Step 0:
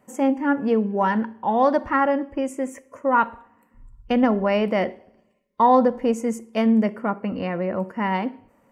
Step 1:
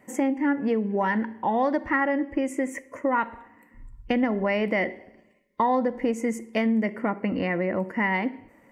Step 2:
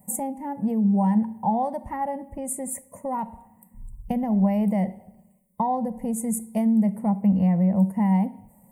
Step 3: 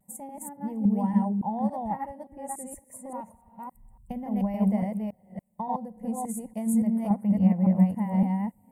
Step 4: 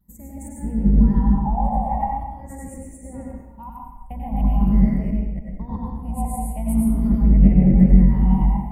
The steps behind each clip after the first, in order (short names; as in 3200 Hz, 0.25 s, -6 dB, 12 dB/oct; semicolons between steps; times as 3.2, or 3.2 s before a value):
thirty-one-band EQ 315 Hz +7 dB, 1250 Hz -4 dB, 2000 Hz +12 dB; compressor 3:1, threshold -25 dBFS, peak gain reduction 10.5 dB; gain +2 dB
EQ curve 130 Hz 0 dB, 190 Hz +8 dB, 310 Hz -21 dB, 840 Hz -2 dB, 1400 Hz -28 dB, 2200 Hz -22 dB, 5500 Hz -17 dB, 8900 Hz +12 dB; gain +5 dB
reverse delay 0.284 s, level 0 dB; vibrato 0.3 Hz 18 cents; upward expander 1.5:1, over -32 dBFS; gain -3.5 dB
octaver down 2 oct, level +2 dB; phaser stages 6, 0.43 Hz, lowest notch 360–1100 Hz; reverb RT60 1.1 s, pre-delay 87 ms, DRR -2 dB; gain +2 dB